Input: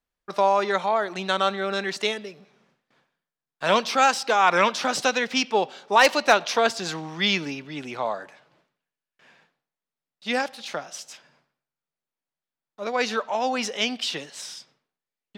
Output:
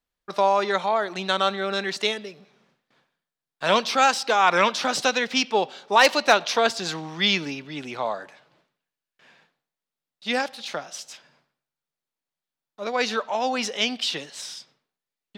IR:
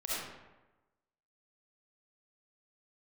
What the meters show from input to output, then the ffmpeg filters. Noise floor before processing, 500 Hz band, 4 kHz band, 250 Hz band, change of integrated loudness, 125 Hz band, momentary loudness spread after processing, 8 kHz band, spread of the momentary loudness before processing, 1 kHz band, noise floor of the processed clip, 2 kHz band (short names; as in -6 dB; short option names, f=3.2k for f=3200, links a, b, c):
under -85 dBFS, 0.0 dB, +2.0 dB, 0.0 dB, +0.5 dB, 0.0 dB, 16 LU, +0.5 dB, 16 LU, 0.0 dB, under -85 dBFS, +0.5 dB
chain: -af "equalizer=f=3.9k:t=o:w=0.71:g=3"